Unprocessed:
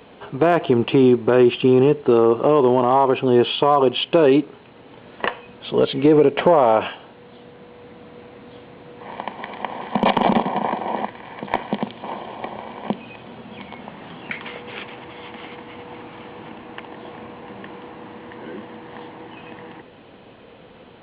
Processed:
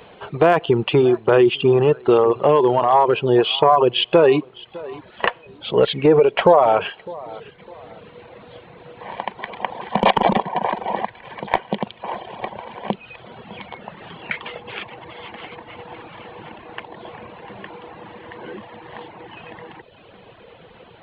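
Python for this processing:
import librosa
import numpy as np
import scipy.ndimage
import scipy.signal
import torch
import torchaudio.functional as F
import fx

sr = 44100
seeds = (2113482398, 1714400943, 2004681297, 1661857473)

y = fx.peak_eq(x, sr, hz=260.0, db=-10.0, octaves=0.54)
y = fx.echo_feedback(y, sr, ms=606, feedback_pct=33, wet_db=-19.0)
y = fx.dereverb_blind(y, sr, rt60_s=0.95)
y = y * 10.0 ** (3.5 / 20.0)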